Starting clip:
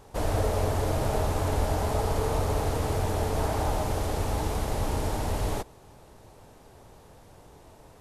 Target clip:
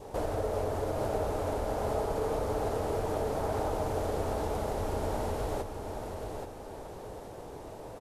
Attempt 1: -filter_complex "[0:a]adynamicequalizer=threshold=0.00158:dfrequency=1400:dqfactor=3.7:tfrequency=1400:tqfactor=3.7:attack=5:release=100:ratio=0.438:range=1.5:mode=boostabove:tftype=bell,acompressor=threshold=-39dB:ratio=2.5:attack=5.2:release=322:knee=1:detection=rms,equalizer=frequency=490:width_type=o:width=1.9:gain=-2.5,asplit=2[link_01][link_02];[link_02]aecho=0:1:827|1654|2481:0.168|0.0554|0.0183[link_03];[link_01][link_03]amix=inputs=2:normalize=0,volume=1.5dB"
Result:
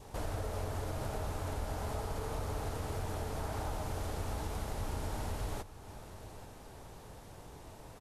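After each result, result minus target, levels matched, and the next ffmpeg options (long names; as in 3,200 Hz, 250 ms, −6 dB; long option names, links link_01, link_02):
echo-to-direct −9 dB; 500 Hz band −5.0 dB
-filter_complex "[0:a]adynamicequalizer=threshold=0.00158:dfrequency=1400:dqfactor=3.7:tfrequency=1400:tqfactor=3.7:attack=5:release=100:ratio=0.438:range=1.5:mode=boostabove:tftype=bell,acompressor=threshold=-39dB:ratio=2.5:attack=5.2:release=322:knee=1:detection=rms,equalizer=frequency=490:width_type=o:width=1.9:gain=-2.5,asplit=2[link_01][link_02];[link_02]aecho=0:1:827|1654|2481|3308:0.473|0.156|0.0515|0.017[link_03];[link_01][link_03]amix=inputs=2:normalize=0,volume=1.5dB"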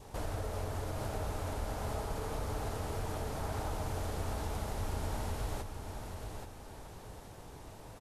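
500 Hz band −4.5 dB
-filter_complex "[0:a]adynamicequalizer=threshold=0.00158:dfrequency=1400:dqfactor=3.7:tfrequency=1400:tqfactor=3.7:attack=5:release=100:ratio=0.438:range=1.5:mode=boostabove:tftype=bell,acompressor=threshold=-39dB:ratio=2.5:attack=5.2:release=322:knee=1:detection=rms,equalizer=frequency=490:width_type=o:width=1.9:gain=9,asplit=2[link_01][link_02];[link_02]aecho=0:1:827|1654|2481|3308:0.473|0.156|0.0515|0.017[link_03];[link_01][link_03]amix=inputs=2:normalize=0,volume=1.5dB"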